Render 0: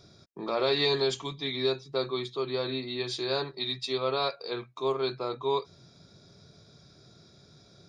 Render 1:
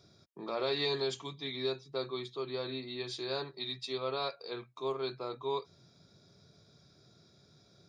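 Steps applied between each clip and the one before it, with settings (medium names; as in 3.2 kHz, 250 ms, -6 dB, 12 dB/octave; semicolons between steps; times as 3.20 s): high-pass 59 Hz; trim -6.5 dB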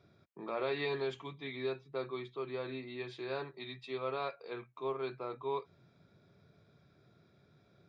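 resonant high shelf 3.5 kHz -13 dB, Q 1.5; trim -2 dB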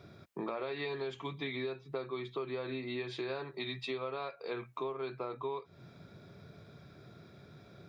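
compression 10:1, threshold -46 dBFS, peak gain reduction 16 dB; trim +11 dB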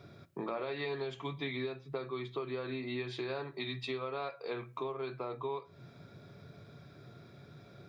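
reverberation RT60 0.40 s, pre-delay 7 ms, DRR 12 dB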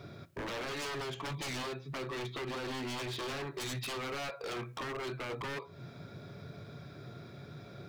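wavefolder -39 dBFS; trim +5.5 dB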